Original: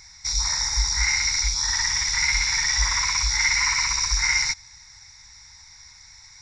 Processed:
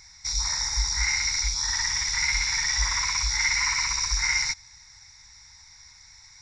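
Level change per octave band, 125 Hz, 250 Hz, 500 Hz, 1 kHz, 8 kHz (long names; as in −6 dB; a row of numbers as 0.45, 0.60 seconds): −3.0 dB, can't be measured, can't be measured, −3.0 dB, −3.0 dB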